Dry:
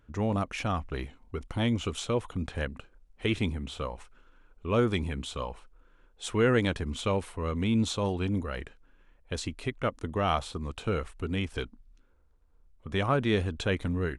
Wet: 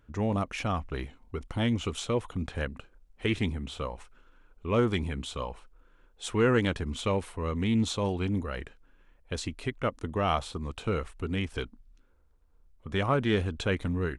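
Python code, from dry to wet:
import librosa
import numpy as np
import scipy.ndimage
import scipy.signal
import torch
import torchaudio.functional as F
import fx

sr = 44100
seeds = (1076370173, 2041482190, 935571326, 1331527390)

y = fx.doppler_dist(x, sr, depth_ms=0.11)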